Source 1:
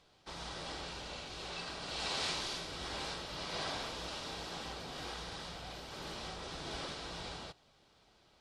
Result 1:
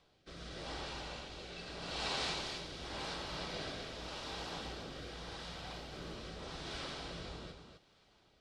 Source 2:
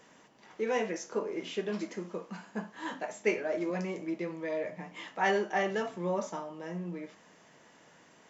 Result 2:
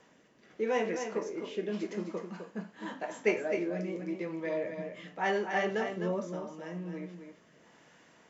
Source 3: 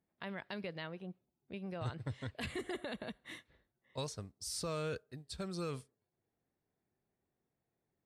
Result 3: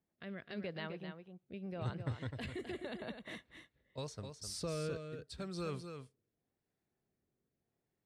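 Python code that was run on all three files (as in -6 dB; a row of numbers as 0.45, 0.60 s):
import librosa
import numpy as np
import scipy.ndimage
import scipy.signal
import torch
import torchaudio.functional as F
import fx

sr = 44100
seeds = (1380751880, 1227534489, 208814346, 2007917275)

y = fx.high_shelf(x, sr, hz=6600.0, db=-7.0)
y = fx.rotary(y, sr, hz=0.85)
y = y + 10.0 ** (-7.5 / 20.0) * np.pad(y, (int(257 * sr / 1000.0), 0))[:len(y)]
y = y * 10.0 ** (1.0 / 20.0)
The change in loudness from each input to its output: -1.5, 0.0, -1.0 LU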